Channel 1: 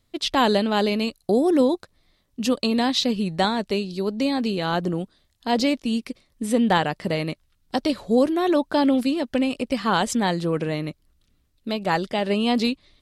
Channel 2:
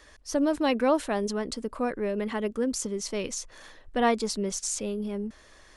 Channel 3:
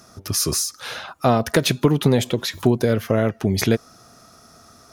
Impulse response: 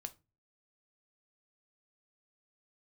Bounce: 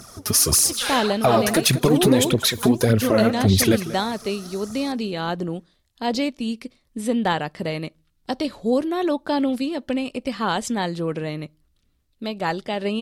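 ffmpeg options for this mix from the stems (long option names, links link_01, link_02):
-filter_complex "[0:a]adelay=550,volume=-3.5dB,asplit=2[link_01][link_02];[link_02]volume=-10dB[link_03];[1:a]volume=-18.5dB[link_04];[2:a]equalizer=frequency=10000:width_type=o:width=0.83:gain=7.5,aphaser=in_gain=1:out_gain=1:delay=5:decay=0.68:speed=1.7:type=triangular,volume=2dB,asplit=2[link_05][link_06];[link_06]volume=-18dB[link_07];[3:a]atrim=start_sample=2205[link_08];[link_03][link_08]afir=irnorm=-1:irlink=0[link_09];[link_07]aecho=0:1:187:1[link_10];[link_01][link_04][link_05][link_09][link_10]amix=inputs=5:normalize=0,alimiter=limit=-6.5dB:level=0:latency=1:release=101"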